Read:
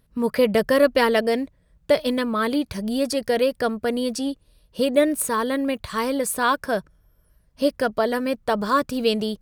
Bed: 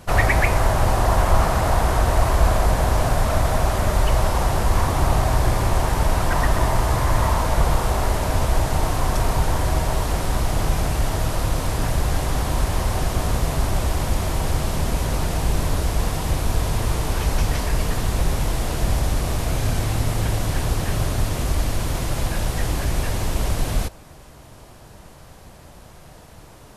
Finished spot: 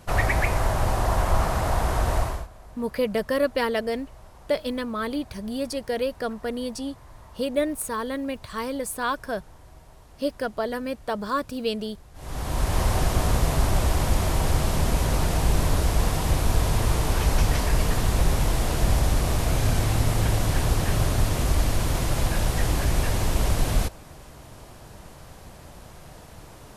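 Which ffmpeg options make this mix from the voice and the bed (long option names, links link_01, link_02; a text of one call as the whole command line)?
ffmpeg -i stem1.wav -i stem2.wav -filter_complex "[0:a]adelay=2600,volume=-6dB[link_01];[1:a]volume=23dB,afade=type=out:start_time=2.16:duration=0.31:silence=0.0668344,afade=type=in:start_time=12.14:duration=0.68:silence=0.0398107[link_02];[link_01][link_02]amix=inputs=2:normalize=0" out.wav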